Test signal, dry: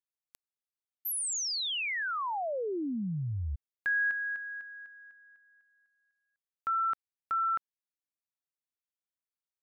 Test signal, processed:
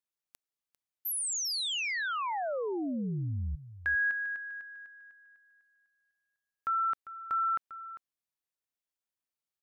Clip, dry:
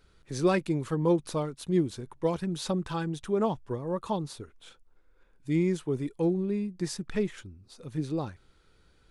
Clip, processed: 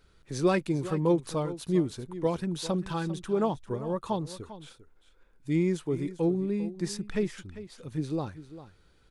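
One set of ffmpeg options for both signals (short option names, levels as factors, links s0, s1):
-af "aecho=1:1:398:0.188"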